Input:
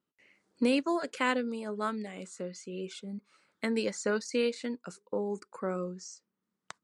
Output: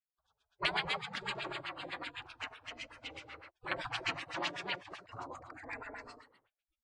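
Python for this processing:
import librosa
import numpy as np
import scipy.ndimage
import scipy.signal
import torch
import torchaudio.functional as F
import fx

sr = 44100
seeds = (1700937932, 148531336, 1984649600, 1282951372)

y = fx.echo_multitap(x, sr, ms=(79, 215, 216, 309), db=(-8.5, -7.0, -8.5, -12.0))
y = fx.spec_gate(y, sr, threshold_db=-30, keep='weak')
y = fx.filter_lfo_lowpass(y, sr, shape='sine', hz=7.9, low_hz=460.0, high_hz=3000.0, q=1.6)
y = y * librosa.db_to_amplitude(14.5)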